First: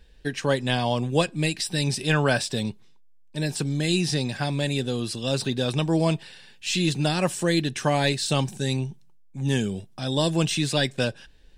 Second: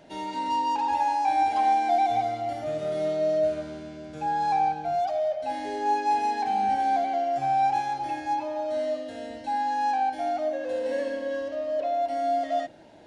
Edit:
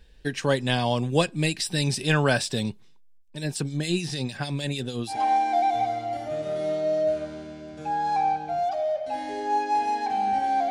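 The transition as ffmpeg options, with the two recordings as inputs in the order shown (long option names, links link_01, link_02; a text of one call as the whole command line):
ffmpeg -i cue0.wav -i cue1.wav -filter_complex "[0:a]asettb=1/sr,asplit=3[link_01][link_02][link_03];[link_01]atrim=end=3.184[link_04];[link_02]atrim=start=3.18:end=5.19,asetpts=PTS-STARTPTS,afade=type=in:duration=0.004:curve=qsin,afade=type=out:start_time=2.006:duration=0.004:curve=qsin,acrossover=split=2500[link_05][link_06];[link_05]aeval=exprs='val(0)*(1-0.7/2+0.7/2*cos(2*PI*6.6*n/s))':channel_layout=same[link_07];[link_06]aeval=exprs='val(0)*(1-0.7/2-0.7/2*cos(2*PI*6.6*n/s))':channel_layout=same[link_08];[link_07][link_08]amix=inputs=2:normalize=0[link_09];[link_03]atrim=start=5.186[link_10];[link_04][link_09]acrossfade=duration=0.004:curve1=hsin:curve2=qsin[link_11];[link_11][link_10]acrossfade=duration=0.004:curve1=qsin:curve2=hsin,apad=whole_dur=10.7,atrim=end=10.7,atrim=end=5.19,asetpts=PTS-STARTPTS[link_12];[1:a]atrim=start=1.43:end=7.06,asetpts=PTS-STARTPTS[link_13];[link_12][link_13]acrossfade=duration=0.12:curve1=tri:curve2=tri" out.wav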